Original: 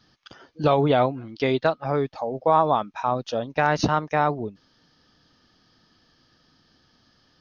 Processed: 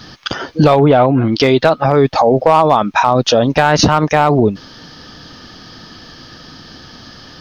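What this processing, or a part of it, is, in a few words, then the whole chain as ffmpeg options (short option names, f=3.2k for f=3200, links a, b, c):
loud club master: -filter_complex "[0:a]acompressor=threshold=-29dB:ratio=1.5,asoftclip=type=hard:threshold=-16.5dB,alimiter=level_in=26dB:limit=-1dB:release=50:level=0:latency=1,asplit=3[a][b][c];[a]afade=t=out:st=0.78:d=0.02[d];[b]lowpass=2.6k,afade=t=in:st=0.78:d=0.02,afade=t=out:st=1.31:d=0.02[e];[c]afade=t=in:st=1.31:d=0.02[f];[d][e][f]amix=inputs=3:normalize=0,volume=-1dB"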